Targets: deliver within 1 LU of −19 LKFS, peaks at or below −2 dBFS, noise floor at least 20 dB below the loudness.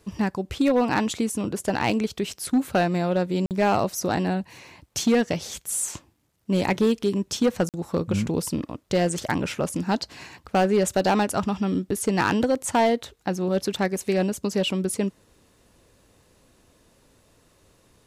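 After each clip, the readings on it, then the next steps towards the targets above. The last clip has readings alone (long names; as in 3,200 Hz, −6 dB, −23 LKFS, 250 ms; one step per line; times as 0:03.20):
share of clipped samples 0.9%; peaks flattened at −14.0 dBFS; number of dropouts 2; longest dropout 48 ms; integrated loudness −24.5 LKFS; sample peak −14.0 dBFS; target loudness −19.0 LKFS
→ clipped peaks rebuilt −14 dBFS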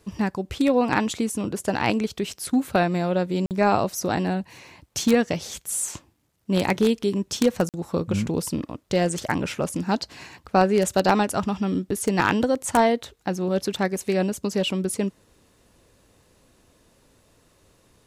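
share of clipped samples 0.0%; number of dropouts 2; longest dropout 48 ms
→ repair the gap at 0:03.46/0:07.69, 48 ms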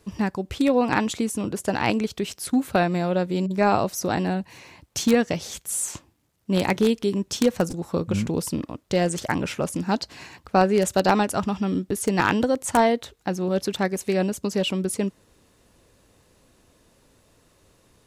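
number of dropouts 0; integrated loudness −24.0 LKFS; sample peak −5.0 dBFS; target loudness −19.0 LKFS
→ level +5 dB
brickwall limiter −2 dBFS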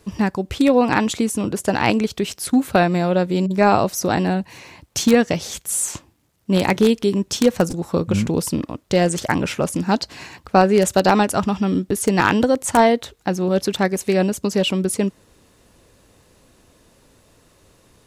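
integrated loudness −19.0 LKFS; sample peak −2.0 dBFS; background noise floor −56 dBFS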